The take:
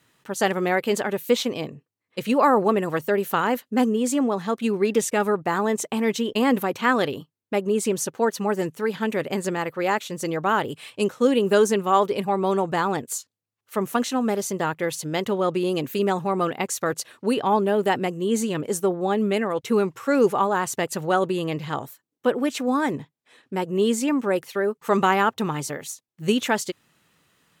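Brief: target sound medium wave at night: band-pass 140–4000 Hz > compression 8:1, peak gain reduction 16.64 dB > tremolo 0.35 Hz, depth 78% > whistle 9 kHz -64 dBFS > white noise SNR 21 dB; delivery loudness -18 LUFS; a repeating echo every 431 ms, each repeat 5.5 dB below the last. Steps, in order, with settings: band-pass 140–4000 Hz; feedback delay 431 ms, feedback 53%, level -5.5 dB; compression 8:1, threshold -29 dBFS; tremolo 0.35 Hz, depth 78%; whistle 9 kHz -64 dBFS; white noise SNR 21 dB; trim +18.5 dB

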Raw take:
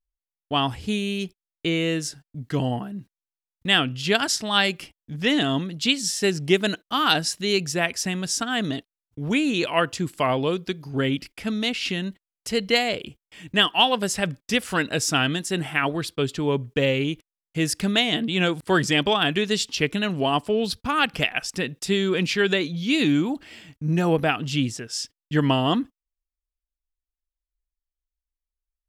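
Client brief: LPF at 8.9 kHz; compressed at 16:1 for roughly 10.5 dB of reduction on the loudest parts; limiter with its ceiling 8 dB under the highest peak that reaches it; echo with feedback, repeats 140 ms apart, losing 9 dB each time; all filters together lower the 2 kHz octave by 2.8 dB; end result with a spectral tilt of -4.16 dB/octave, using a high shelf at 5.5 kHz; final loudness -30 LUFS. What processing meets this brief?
low-pass 8.9 kHz; peaking EQ 2 kHz -4.5 dB; treble shelf 5.5 kHz +4 dB; compression 16:1, threshold -24 dBFS; peak limiter -20.5 dBFS; feedback delay 140 ms, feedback 35%, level -9 dB; trim +0.5 dB

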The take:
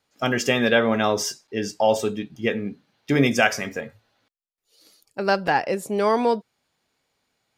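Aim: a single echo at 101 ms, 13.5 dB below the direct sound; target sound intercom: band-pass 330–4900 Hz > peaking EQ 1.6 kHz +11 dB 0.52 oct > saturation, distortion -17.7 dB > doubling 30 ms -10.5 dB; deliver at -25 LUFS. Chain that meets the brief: band-pass 330–4900 Hz; peaking EQ 1.6 kHz +11 dB 0.52 oct; delay 101 ms -13.5 dB; saturation -6.5 dBFS; doubling 30 ms -10.5 dB; trim -4.5 dB

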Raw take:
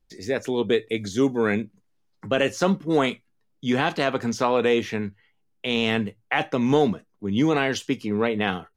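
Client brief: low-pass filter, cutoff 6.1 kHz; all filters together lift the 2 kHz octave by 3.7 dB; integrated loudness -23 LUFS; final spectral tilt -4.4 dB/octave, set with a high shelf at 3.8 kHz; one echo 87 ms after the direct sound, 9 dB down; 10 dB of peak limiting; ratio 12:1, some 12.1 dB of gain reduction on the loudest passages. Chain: low-pass 6.1 kHz; peaking EQ 2 kHz +6 dB; treble shelf 3.8 kHz -5 dB; compression 12:1, threshold -27 dBFS; peak limiter -20.5 dBFS; delay 87 ms -9 dB; trim +10.5 dB

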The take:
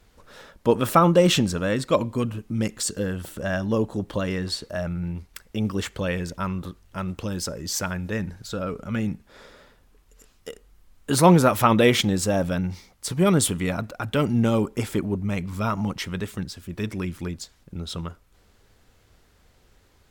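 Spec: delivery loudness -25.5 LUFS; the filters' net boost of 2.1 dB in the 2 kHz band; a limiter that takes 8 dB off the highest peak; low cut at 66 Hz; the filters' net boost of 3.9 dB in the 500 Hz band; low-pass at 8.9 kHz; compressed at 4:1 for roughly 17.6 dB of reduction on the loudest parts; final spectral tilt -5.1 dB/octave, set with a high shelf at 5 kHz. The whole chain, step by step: high-pass 66 Hz; low-pass 8.9 kHz; peaking EQ 500 Hz +4.5 dB; peaking EQ 2 kHz +3 dB; treble shelf 5 kHz -3.5 dB; compression 4:1, threshold -31 dBFS; trim +10 dB; peak limiter -13 dBFS

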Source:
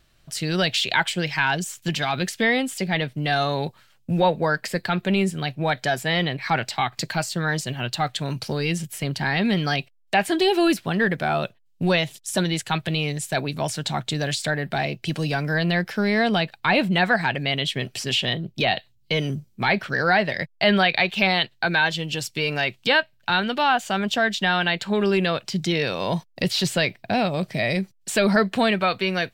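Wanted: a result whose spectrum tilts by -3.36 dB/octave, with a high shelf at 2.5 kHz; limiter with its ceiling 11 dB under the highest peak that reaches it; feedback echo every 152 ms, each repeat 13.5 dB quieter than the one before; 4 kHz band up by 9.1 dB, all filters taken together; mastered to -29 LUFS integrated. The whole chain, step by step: treble shelf 2.5 kHz +3.5 dB; peaking EQ 4 kHz +8.5 dB; peak limiter -11 dBFS; feedback delay 152 ms, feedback 21%, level -13.5 dB; trim -7 dB

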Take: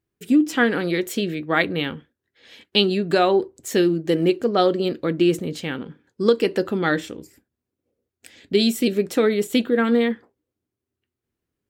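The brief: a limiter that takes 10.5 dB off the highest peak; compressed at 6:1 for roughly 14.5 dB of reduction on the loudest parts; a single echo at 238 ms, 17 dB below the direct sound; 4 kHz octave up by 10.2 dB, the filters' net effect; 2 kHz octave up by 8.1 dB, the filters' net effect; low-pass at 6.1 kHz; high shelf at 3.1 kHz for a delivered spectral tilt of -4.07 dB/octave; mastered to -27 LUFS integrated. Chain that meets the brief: low-pass 6.1 kHz; peaking EQ 2 kHz +7 dB; treble shelf 3.1 kHz +4 dB; peaking EQ 4 kHz +8 dB; compression 6:1, threshold -21 dBFS; peak limiter -15 dBFS; delay 238 ms -17 dB

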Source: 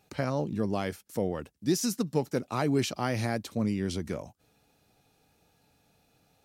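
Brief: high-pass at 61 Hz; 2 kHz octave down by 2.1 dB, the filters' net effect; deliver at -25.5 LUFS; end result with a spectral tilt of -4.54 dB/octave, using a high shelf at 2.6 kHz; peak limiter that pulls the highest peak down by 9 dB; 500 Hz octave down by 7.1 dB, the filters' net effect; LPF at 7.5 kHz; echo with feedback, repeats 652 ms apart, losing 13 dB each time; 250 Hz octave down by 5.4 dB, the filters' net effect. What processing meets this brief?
high-pass 61 Hz; low-pass 7.5 kHz; peaking EQ 250 Hz -5 dB; peaking EQ 500 Hz -7.5 dB; peaking EQ 2 kHz -4.5 dB; treble shelf 2.6 kHz +5.5 dB; peak limiter -25.5 dBFS; feedback delay 652 ms, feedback 22%, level -13 dB; trim +11.5 dB

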